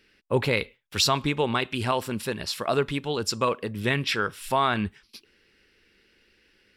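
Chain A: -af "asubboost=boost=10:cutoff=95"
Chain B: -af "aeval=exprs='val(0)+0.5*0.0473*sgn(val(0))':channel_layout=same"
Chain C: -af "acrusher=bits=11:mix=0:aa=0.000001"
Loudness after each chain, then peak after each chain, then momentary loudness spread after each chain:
−26.0, −24.5, −26.5 LKFS; −10.5, −10.0, −10.5 dBFS; 6, 9, 7 LU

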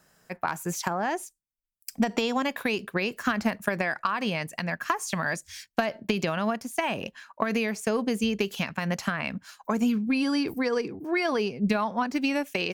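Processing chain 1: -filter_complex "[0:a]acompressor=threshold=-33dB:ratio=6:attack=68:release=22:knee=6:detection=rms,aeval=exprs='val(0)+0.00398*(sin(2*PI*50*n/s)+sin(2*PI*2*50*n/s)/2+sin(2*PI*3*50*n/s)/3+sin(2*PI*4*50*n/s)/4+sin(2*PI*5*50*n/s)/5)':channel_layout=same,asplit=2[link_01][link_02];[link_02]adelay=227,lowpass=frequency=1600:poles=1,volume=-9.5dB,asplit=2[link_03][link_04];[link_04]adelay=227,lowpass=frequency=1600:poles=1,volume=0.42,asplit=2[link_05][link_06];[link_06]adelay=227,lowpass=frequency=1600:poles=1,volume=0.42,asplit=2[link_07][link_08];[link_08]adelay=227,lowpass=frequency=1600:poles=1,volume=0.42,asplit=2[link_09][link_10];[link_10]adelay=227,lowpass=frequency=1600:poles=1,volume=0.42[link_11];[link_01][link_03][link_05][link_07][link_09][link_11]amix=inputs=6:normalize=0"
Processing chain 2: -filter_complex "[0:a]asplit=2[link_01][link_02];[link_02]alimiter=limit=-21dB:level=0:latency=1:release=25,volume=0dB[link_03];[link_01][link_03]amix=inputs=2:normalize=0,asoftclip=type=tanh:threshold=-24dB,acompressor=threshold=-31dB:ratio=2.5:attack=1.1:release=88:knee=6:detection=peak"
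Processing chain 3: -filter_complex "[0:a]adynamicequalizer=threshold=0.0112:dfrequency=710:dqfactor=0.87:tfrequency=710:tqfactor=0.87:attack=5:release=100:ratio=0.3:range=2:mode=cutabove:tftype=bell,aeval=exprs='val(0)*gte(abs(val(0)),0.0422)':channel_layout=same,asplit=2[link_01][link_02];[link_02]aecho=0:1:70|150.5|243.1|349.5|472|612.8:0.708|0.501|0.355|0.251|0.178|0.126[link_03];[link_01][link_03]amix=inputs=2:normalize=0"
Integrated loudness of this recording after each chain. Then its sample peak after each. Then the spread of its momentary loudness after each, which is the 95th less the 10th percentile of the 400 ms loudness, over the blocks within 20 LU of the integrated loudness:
−32.0, −32.5, −26.5 LKFS; −12.5, −25.0, −10.0 dBFS; 5, 5, 7 LU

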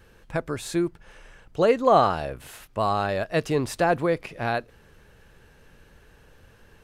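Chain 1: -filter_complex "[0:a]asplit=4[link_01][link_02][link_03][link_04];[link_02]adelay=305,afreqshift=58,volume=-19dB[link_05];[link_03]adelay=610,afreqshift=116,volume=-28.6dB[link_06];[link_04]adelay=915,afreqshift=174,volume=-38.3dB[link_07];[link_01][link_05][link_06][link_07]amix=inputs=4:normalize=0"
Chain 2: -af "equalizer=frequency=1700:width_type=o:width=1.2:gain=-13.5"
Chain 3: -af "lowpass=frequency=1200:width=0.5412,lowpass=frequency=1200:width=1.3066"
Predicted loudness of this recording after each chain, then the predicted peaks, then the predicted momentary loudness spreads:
−24.5, −27.0, −25.5 LKFS; −4.5, −9.5, −6.0 dBFS; 14, 13, 14 LU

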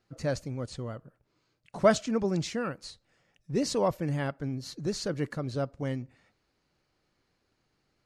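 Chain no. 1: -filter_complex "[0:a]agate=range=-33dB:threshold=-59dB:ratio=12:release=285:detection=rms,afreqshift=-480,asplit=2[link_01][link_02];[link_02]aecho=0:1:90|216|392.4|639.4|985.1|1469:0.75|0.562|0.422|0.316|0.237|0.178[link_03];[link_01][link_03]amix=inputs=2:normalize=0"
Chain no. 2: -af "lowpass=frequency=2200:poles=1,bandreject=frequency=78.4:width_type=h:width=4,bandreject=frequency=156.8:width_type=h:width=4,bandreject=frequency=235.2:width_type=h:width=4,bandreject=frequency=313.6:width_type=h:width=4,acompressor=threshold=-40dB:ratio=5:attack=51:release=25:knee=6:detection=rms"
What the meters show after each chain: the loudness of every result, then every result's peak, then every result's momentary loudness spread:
−29.5, −40.0 LKFS; −9.5, −25.0 dBFS; 18, 10 LU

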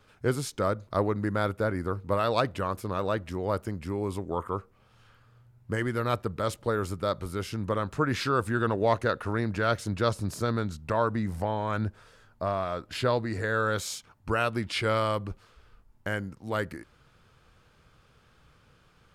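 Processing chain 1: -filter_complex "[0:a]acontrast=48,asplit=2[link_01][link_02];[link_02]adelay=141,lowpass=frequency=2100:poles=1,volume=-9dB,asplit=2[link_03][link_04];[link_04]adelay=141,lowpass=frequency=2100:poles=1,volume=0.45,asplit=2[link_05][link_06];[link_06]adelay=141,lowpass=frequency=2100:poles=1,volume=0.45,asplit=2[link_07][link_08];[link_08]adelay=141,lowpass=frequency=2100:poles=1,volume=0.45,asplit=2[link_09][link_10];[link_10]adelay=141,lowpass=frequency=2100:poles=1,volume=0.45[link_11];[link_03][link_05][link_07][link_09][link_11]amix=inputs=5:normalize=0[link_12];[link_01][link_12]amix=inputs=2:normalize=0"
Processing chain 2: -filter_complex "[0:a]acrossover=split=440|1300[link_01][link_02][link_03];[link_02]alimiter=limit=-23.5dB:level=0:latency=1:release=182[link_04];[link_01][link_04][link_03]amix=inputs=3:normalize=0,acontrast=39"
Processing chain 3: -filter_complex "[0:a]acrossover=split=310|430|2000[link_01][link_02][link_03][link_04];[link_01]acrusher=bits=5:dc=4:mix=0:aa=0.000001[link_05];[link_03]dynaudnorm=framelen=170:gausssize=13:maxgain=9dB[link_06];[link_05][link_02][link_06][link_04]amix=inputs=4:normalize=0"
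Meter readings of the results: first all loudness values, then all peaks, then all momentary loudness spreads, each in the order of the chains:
−23.5, −25.0, −24.5 LKFS; −6.0, −7.0, −4.0 dBFS; 8, 6, 10 LU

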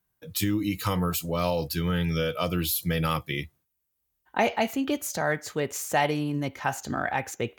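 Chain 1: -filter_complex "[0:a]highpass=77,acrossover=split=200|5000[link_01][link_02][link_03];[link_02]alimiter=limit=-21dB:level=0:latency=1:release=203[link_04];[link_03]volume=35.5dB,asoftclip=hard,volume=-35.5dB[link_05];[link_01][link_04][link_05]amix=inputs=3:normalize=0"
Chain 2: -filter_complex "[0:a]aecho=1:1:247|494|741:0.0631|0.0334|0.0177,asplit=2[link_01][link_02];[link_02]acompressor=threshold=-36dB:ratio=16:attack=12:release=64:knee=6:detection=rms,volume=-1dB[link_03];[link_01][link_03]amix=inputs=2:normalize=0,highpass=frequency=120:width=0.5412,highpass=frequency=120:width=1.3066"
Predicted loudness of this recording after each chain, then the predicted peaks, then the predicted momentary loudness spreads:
−30.5, −26.0 LKFS; −16.5, −6.0 dBFS; 6, 4 LU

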